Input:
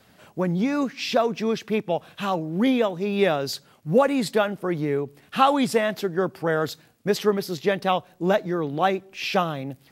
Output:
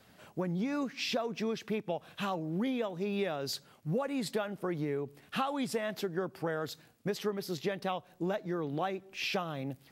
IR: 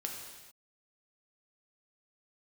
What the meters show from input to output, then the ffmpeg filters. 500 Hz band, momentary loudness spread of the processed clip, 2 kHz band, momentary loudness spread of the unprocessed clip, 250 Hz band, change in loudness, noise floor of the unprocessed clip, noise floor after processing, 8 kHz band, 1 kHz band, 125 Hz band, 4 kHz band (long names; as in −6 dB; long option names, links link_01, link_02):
−12.0 dB, 5 LU, −10.5 dB, 8 LU, −10.0 dB, −11.0 dB, −57 dBFS, −62 dBFS, −8.0 dB, −13.5 dB, −8.5 dB, −8.5 dB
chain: -af "acompressor=threshold=-26dB:ratio=5,volume=-4.5dB"